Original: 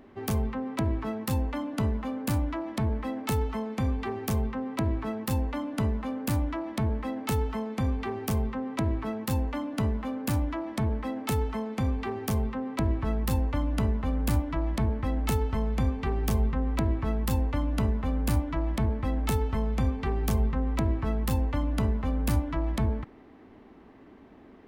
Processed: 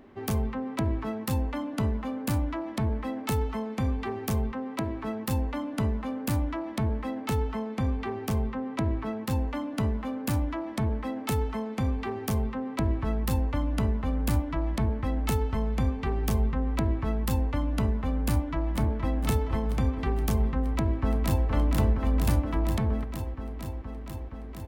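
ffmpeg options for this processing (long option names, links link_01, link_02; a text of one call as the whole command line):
ffmpeg -i in.wav -filter_complex "[0:a]asettb=1/sr,asplit=3[link_01][link_02][link_03];[link_01]atrim=end=4.524[link_04];[link_02]atrim=start=4.52:end=5.04,asetpts=PTS-STARTPTS,afade=type=in:duration=0.004:curve=qsin,afade=type=out:start_time=0.516:duration=0.004:curve=qsin,highpass=frequency=170:poles=1[link_05];[link_03]atrim=start=5.036[link_06];[link_04][link_05]acrossfade=duration=0.004:curve1=hsin:curve2=qsin[link_07];[link_07][link_06]acrossfade=duration=0.004:curve1=qsin:curve2=hsin,asettb=1/sr,asplit=3[link_08][link_09][link_10];[link_08]atrim=end=7.204[link_11];[link_09]atrim=start=7.2:end=9.41,asetpts=PTS-STARTPTS,afade=type=in:duration=0.004:curve=qsin,afade=type=out:start_time=2.206:duration=0.004:curve=qsin,highshelf=frequency=6900:gain=-6[link_12];[link_10]atrim=start=9.406[link_13];[link_11][link_12]acrossfade=duration=0.004:curve1=hsin:curve2=qsin[link_14];[link_14][link_13]acrossfade=duration=0.004:curve1=qsin:curve2=hsin,asplit=2[link_15][link_16];[link_16]afade=type=in:start_time=18.28:duration=0.01,afade=type=out:start_time=19.19:duration=0.01,aecho=0:1:470|940|1410|1880|2350|2820|3290|3760|4230:0.375837|0.244294|0.158791|0.103214|0.0670893|0.0436081|0.0283452|0.0184244|0.0119759[link_17];[link_15][link_17]amix=inputs=2:normalize=0,asplit=2[link_18][link_19];[link_19]afade=type=in:start_time=20.56:duration=0.01,afade=type=out:start_time=21.46:duration=0.01,aecho=0:1:470|940|1410|1880|2350|2820|3290|3760|4230|4700|5170|5640:0.668344|0.534675|0.42774|0.342192|0.273754|0.219003|0.175202|0.140162|0.11213|0.0897036|0.0717629|0.0574103[link_20];[link_18][link_20]amix=inputs=2:normalize=0" out.wav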